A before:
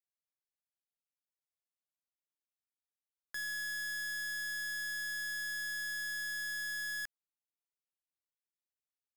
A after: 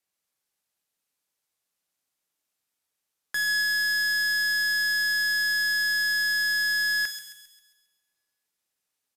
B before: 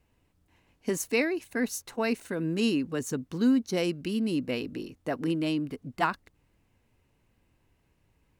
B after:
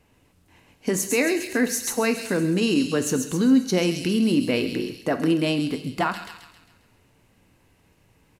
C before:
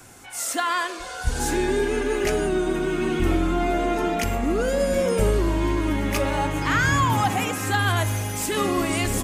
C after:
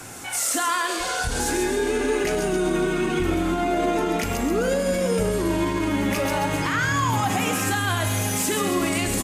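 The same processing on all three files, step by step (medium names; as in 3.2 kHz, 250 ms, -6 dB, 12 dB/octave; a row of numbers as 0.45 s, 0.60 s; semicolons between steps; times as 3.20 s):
feedback echo behind a high-pass 134 ms, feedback 48%, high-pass 4.2 kHz, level -3 dB; resampled via 32 kHz; compression 1.5:1, threshold -32 dBFS; bass shelf 84 Hz -7 dB; peak limiter -23.5 dBFS; two-slope reverb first 0.84 s, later 2.2 s, from -24 dB, DRR 8.5 dB; normalise loudness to -23 LUFS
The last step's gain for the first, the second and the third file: +12.5 dB, +10.5 dB, +8.5 dB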